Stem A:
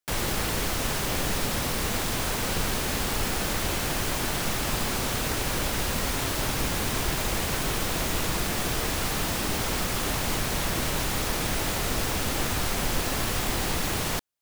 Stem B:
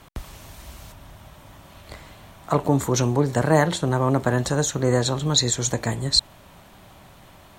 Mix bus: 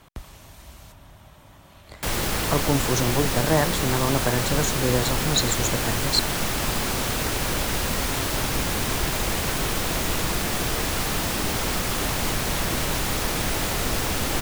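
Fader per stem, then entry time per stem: +2.5, -3.5 dB; 1.95, 0.00 s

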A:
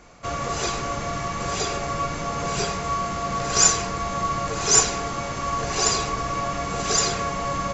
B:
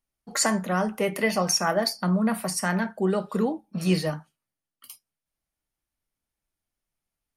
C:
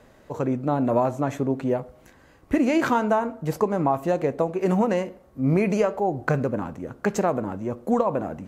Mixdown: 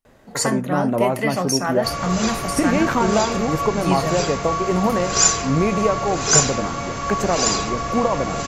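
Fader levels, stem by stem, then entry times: +1.5, +1.0, +1.5 dB; 1.60, 0.00, 0.05 s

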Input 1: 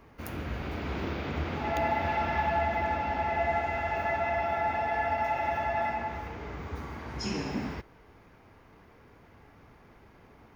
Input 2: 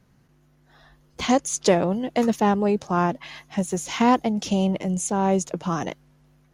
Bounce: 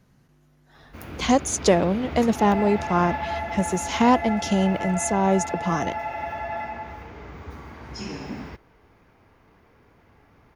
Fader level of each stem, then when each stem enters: -1.0, +0.5 dB; 0.75, 0.00 s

